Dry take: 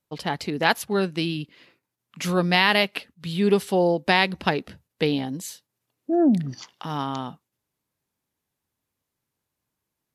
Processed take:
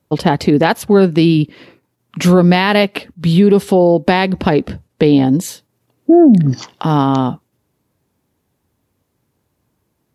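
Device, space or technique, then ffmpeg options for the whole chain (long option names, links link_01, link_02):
mastering chain: -filter_complex "[0:a]asettb=1/sr,asplit=3[link_01][link_02][link_03];[link_01]atrim=end=4.624[link_04];[link_02]atrim=start=4.62:end=5.41,asetpts=PTS-STARTPTS,afade=type=in:duration=0.004:curve=qsin,afade=type=out:start_time=0.786:duration=0.004:curve=qsin,lowpass=12000[link_05];[link_03]atrim=start=5.406[link_06];[link_04][link_05]acrossfade=duration=0.004:curve1=hsin:curve2=qsin[link_07];[link_07][link_06]acrossfade=duration=0.004:curve1=qsin:curve2=hsin,highpass=49,equalizer=frequency=160:width_type=o:width=1.1:gain=-2.5,acompressor=threshold=-26dB:ratio=2,tiltshelf=frequency=830:gain=6.5,alimiter=level_in=16dB:limit=-1dB:release=50:level=0:latency=1,volume=-1dB"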